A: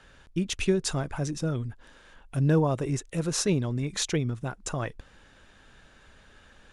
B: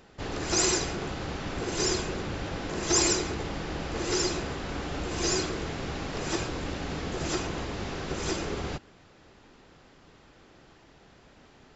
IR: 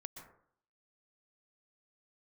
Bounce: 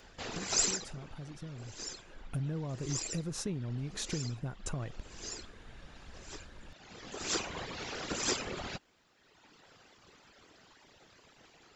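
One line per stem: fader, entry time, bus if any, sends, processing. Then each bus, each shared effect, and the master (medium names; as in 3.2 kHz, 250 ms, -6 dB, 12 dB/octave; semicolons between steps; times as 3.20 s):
2.01 s -12.5 dB -> 2.23 s -4.5 dB, 0.00 s, no send, bass shelf 270 Hz +11 dB; compression 10:1, threshold -29 dBFS, peak gain reduction 17.5 dB
-0.5 dB, 0.00 s, no send, reverb removal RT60 1.5 s; tilt EQ +2 dB/octave; whisper effect; auto duck -17 dB, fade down 1.45 s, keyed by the first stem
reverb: none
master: none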